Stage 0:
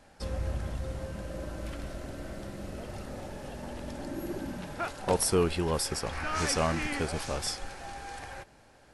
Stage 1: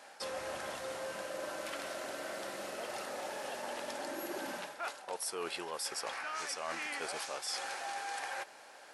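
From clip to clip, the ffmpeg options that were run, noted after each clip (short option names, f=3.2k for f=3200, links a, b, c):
-af "highpass=620,areverse,acompressor=threshold=-43dB:ratio=10,areverse,volume=7dB"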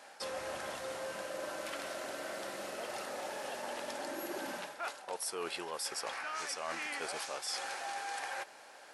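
-af anull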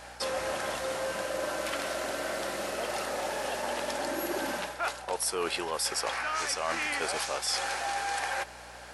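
-af "aeval=exprs='val(0)+0.000708*(sin(2*PI*60*n/s)+sin(2*PI*2*60*n/s)/2+sin(2*PI*3*60*n/s)/3+sin(2*PI*4*60*n/s)/4+sin(2*PI*5*60*n/s)/5)':c=same,volume=8dB"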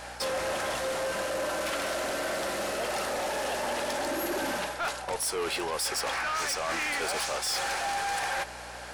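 -af "asoftclip=type=tanh:threshold=-31dB,volume=5dB"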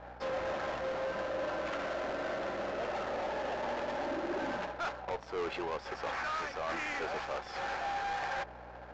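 -af "adynamicsmooth=sensitivity=3:basefreq=810,aresample=16000,aresample=44100,volume=-3.5dB"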